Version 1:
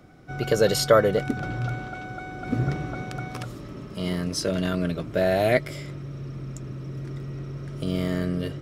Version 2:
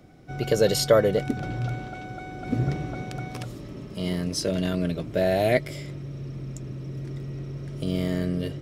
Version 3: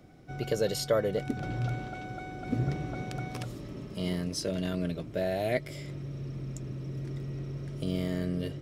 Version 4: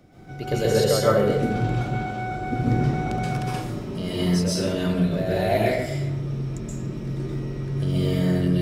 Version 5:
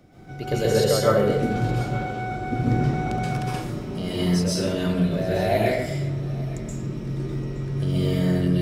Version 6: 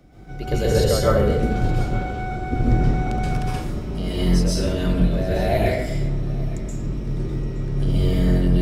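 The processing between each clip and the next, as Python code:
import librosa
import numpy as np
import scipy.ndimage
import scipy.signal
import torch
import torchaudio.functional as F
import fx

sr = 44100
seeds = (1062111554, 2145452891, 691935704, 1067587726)

y1 = fx.peak_eq(x, sr, hz=1300.0, db=-7.0, octaves=0.72)
y2 = fx.rider(y1, sr, range_db=3, speed_s=0.5)
y2 = y2 * 10.0 ** (-5.5 / 20.0)
y3 = fx.rev_plate(y2, sr, seeds[0], rt60_s=0.84, hf_ratio=0.6, predelay_ms=115, drr_db=-8.0)
y3 = y3 * 10.0 ** (1.0 / 20.0)
y4 = y3 + 10.0 ** (-20.0 / 20.0) * np.pad(y3, (int(870 * sr / 1000.0), 0))[:len(y3)]
y5 = fx.octave_divider(y4, sr, octaves=2, level_db=3.0)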